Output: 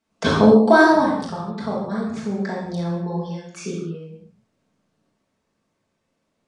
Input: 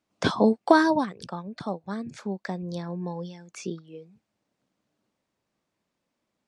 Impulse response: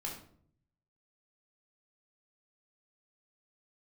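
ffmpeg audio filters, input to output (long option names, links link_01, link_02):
-filter_complex "[1:a]atrim=start_sample=2205,atrim=end_sample=6174,asetrate=22491,aresample=44100[link_01];[0:a][link_01]afir=irnorm=-1:irlink=0,volume=1.5dB"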